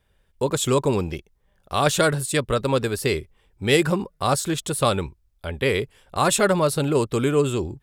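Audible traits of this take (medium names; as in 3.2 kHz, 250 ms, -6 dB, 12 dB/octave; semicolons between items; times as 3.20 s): noise floor -65 dBFS; spectral tilt -4.5 dB/octave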